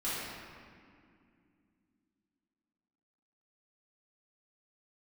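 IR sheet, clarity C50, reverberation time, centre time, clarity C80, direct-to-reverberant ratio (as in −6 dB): −3.5 dB, 2.3 s, 142 ms, −1.0 dB, −12.0 dB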